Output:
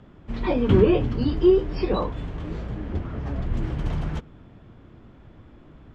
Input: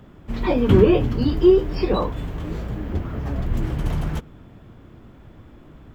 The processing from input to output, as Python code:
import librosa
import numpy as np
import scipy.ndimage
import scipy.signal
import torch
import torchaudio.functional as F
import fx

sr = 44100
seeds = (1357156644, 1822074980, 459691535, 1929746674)

y = scipy.signal.sosfilt(scipy.signal.butter(2, 5700.0, 'lowpass', fs=sr, output='sos'), x)
y = F.gain(torch.from_numpy(y), -3.0).numpy()